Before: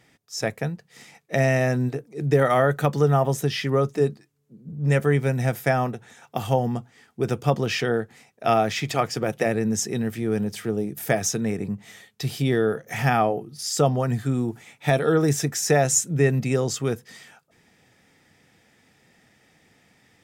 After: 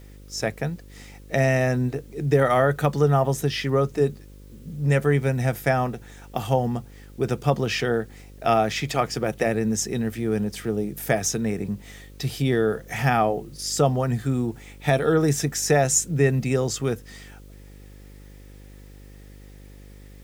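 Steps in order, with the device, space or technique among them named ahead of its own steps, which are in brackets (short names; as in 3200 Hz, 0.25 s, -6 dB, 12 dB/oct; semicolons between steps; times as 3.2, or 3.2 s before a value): video cassette with head-switching buzz (buzz 50 Hz, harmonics 11, -45 dBFS -6 dB/oct; white noise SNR 36 dB)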